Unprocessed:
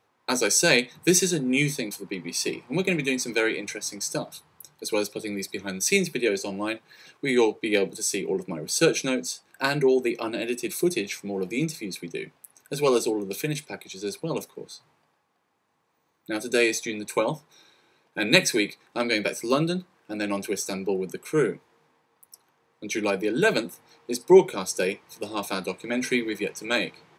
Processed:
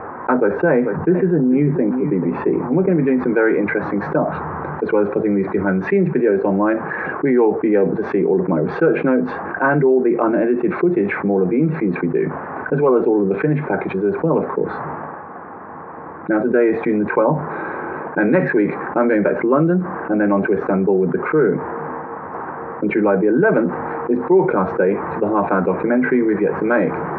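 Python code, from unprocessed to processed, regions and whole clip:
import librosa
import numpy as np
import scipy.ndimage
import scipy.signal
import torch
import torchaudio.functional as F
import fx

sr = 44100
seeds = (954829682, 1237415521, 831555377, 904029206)

y = fx.chain(x, sr, fx.lowpass(hz=1200.0, slope=6),
    fx.echo_single(ms=440, db=-18.5), at=(0.37, 3.02))
y = scipy.signal.sosfilt(scipy.signal.butter(6, 1600.0, 'lowpass', fs=sr, output='sos'), y)
y = fx.peak_eq(y, sr, hz=120.0, db=-12.0, octaves=0.29)
y = fx.env_flatten(y, sr, amount_pct=70)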